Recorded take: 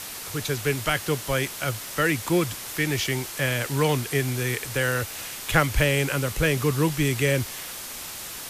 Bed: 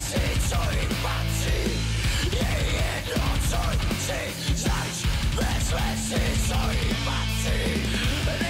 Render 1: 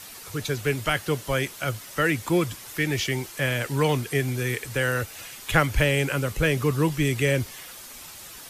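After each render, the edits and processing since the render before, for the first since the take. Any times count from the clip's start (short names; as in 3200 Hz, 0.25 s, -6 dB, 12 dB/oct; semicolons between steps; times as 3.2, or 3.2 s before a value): denoiser 8 dB, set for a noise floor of -37 dBFS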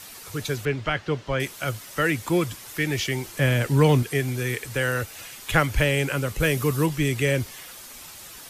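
0.65–1.4 air absorption 160 m; 3.26–4.03 low shelf 420 Hz +8 dB; 6.4–6.86 high shelf 8400 Hz +9 dB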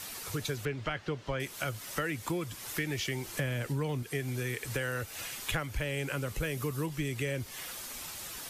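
compressor 6:1, threshold -31 dBFS, peak gain reduction 17 dB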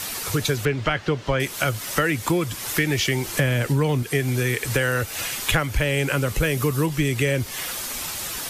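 gain +12 dB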